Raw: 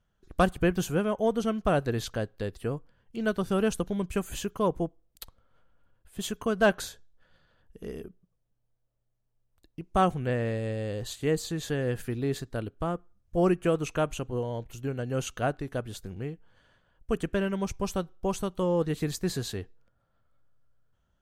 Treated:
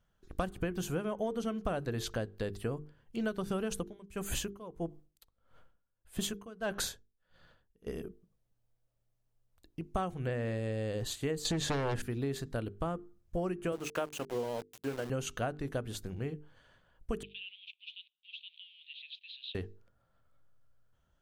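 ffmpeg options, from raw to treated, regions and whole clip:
-filter_complex "[0:a]asettb=1/sr,asplit=3[s0][s1][s2];[s0]atrim=end=3.714[s3];[s1]atrim=start=3.71:end=7.87,asetpts=PTS-STARTPTS,afade=t=in:d=0.004:c=qsin,afade=t=out:st=4.156:d=0.004:c=qsin,acontrast=30,aeval=exprs='val(0)*pow(10,-26*(0.5-0.5*cos(2*PI*1.6*n/s))/20)':c=same[s4];[s2]atrim=start=7.866[s5];[s3][s4]acrossfade=d=0.004:c1=hsin:c2=qsin[s6];[s6][s5]acrossfade=d=0.004:c1=qsin:c2=hsin,asettb=1/sr,asplit=3[s7][s8][s9];[s7]atrim=end=11.454[s10];[s8]atrim=start=11.45:end=12.02,asetpts=PTS-STARTPTS,afade=t=in:d=0.004:c=qsin,afade=t=out:st=0.566:d=0.004:c=qsin,lowpass=8300,aeval=exprs='0.133*sin(PI/2*2.82*val(0)/0.133)':c=same[s11];[s9]atrim=start=12.016[s12];[s10][s11]acrossfade=d=0.004:c1=hsin:c2=qsin[s13];[s13][s12]acrossfade=d=0.004:c1=qsin:c2=hsin,asettb=1/sr,asplit=3[s14][s15][s16];[s14]atrim=end=13.724[s17];[s15]atrim=start=13.72:end=15.1,asetpts=PTS-STARTPTS,afade=t=in:d=0.004:c=qsin,afade=t=out:st=1.376:d=0.004:c=qsin,highpass=220,bandreject=f=50:t=h:w=6,bandreject=f=100:t=h:w=6,bandreject=f=150:t=h:w=6,bandreject=f=200:t=h:w=6,bandreject=f=250:t=h:w=6,bandreject=f=300:t=h:w=6,bandreject=f=350:t=h:w=6,bandreject=f=400:t=h:w=6,aeval=exprs='val(0)*gte(abs(val(0)),0.01)':c=same[s18];[s16]atrim=start=15.096[s19];[s17][s18]acrossfade=d=0.004:c1=hsin:c2=qsin[s20];[s20][s19]acrossfade=d=0.004:c1=qsin:c2=hsin,asettb=1/sr,asplit=3[s21][s22][s23];[s21]atrim=end=17.234[s24];[s22]atrim=start=17.23:end=19.55,asetpts=PTS-STARTPTS,afade=t=in:d=0.004:c=qsin,afade=t=out:st=2.316:d=0.004:c=qsin,aeval=exprs='val(0)+0.5*0.00891*sgn(val(0))':c=same,asuperpass=centerf=3100:order=8:qfactor=2.4[s25];[s23]atrim=start=19.546[s26];[s24][s25]acrossfade=d=0.004:c1=hsin:c2=qsin[s27];[s27][s26]acrossfade=d=0.004:c1=qsin:c2=hsin,bandreject=f=50:t=h:w=6,bandreject=f=100:t=h:w=6,bandreject=f=150:t=h:w=6,bandreject=f=200:t=h:w=6,bandreject=f=250:t=h:w=6,bandreject=f=300:t=h:w=6,bandreject=f=350:t=h:w=6,bandreject=f=400:t=h:w=6,bandreject=f=450:t=h:w=6,acompressor=threshold=0.0316:ratio=12"

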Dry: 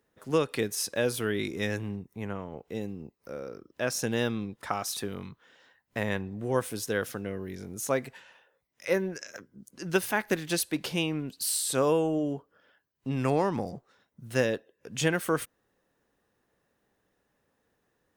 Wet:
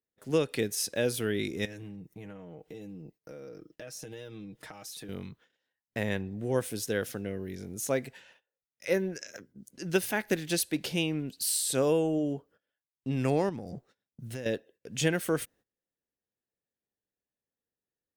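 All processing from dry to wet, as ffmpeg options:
-filter_complex "[0:a]asettb=1/sr,asplit=3[s0][s1][s2];[s0]atrim=end=1.654[s3];[s1]atrim=start=1.65:end=5.09,asetpts=PTS-STARTPTS,afade=t=in:d=0.004:c=qsin,afade=t=out:st=3.436:d=0.004:c=qsin,aecho=1:1:6.4:0.73,atrim=end_sample=151704,acompressor=threshold=0.01:ratio=6:attack=3.2:release=140:knee=1:detection=peak[s4];[s2]atrim=start=5.086[s5];[s3][s4]acrossfade=d=0.004:c1=hsin:c2=qsin[s6];[s6][s5]acrossfade=d=0.004:c1=qsin:c2=hsin,asettb=1/sr,asplit=3[s7][s8][s9];[s7]atrim=end=13.494[s10];[s8]atrim=start=13.49:end=14.46,asetpts=PTS-STARTPTS,afade=t=in:d=0.004:c=qsin,afade=t=out:st=0.966:d=0.004:c=qsin,lowshelf=f=310:g=3.5,acompressor=threshold=0.02:ratio=6:attack=3.2:release=140:knee=1:detection=peak[s11];[s9]atrim=start=14.456[s12];[s10][s11]acrossfade=d=0.004:c1=hsin:c2=qsin[s13];[s13][s12]acrossfade=d=0.004:c1=qsin:c2=hsin,agate=range=0.0891:threshold=0.00158:ratio=16:detection=peak,equalizer=f=1100:w=1.7:g=-8.5"

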